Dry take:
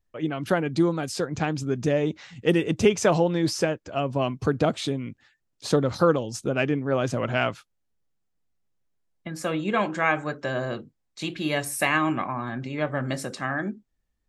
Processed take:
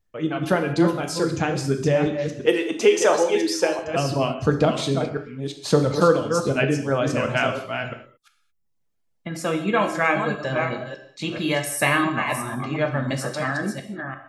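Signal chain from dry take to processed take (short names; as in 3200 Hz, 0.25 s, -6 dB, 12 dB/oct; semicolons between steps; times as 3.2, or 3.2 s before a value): reverse delay 0.345 s, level -6 dB; reverb removal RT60 0.76 s; 2.46–3.79 HPF 310 Hz 24 dB/oct; 10.48–11.39 high shelf 8100 Hz -8.5 dB; non-linear reverb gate 0.25 s falling, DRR 4.5 dB; gain +2.5 dB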